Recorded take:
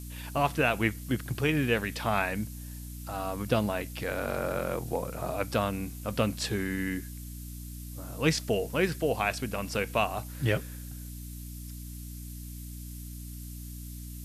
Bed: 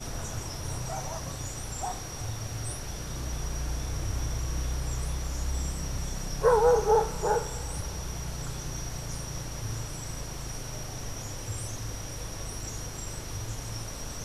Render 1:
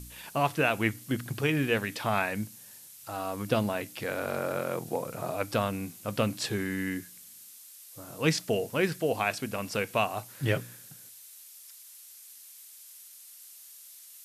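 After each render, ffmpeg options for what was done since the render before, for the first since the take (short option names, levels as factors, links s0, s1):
-af "bandreject=f=60:t=h:w=4,bandreject=f=120:t=h:w=4,bandreject=f=180:t=h:w=4,bandreject=f=240:t=h:w=4,bandreject=f=300:t=h:w=4"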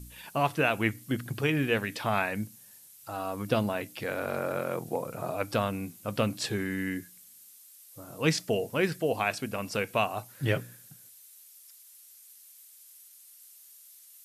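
-af "afftdn=nr=6:nf=-51"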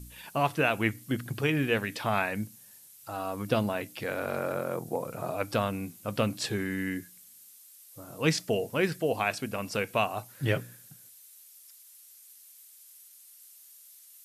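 -filter_complex "[0:a]asettb=1/sr,asplit=3[s0][s1][s2];[s0]atrim=end=4.544[s3];[s1]atrim=start=4.54:end=5.01,asetpts=PTS-STARTPTS,afade=t=in:d=0.004:c=qsin,afade=t=out:st=0.466:d=0.004:c=qsin,equalizer=f=2600:w=1.1:g=-5.5[s4];[s2]atrim=start=5.006[s5];[s3][s4]acrossfade=d=0.004:c1=hsin:c2=qsin[s6];[s6][s5]acrossfade=d=0.004:c1=qsin:c2=hsin"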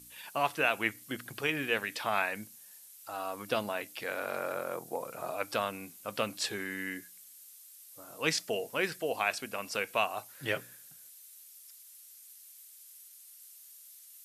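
-af "highpass=f=710:p=1"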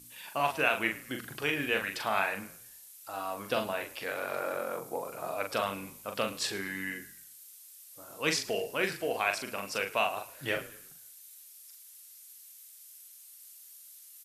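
-filter_complex "[0:a]asplit=2[s0][s1];[s1]adelay=41,volume=0.531[s2];[s0][s2]amix=inputs=2:normalize=0,asplit=4[s3][s4][s5][s6];[s4]adelay=108,afreqshift=-50,volume=0.126[s7];[s5]adelay=216,afreqshift=-100,volume=0.0519[s8];[s6]adelay=324,afreqshift=-150,volume=0.0211[s9];[s3][s7][s8][s9]amix=inputs=4:normalize=0"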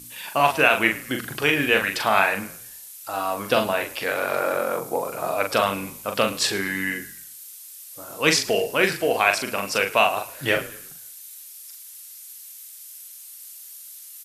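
-af "volume=3.35,alimiter=limit=0.794:level=0:latency=1"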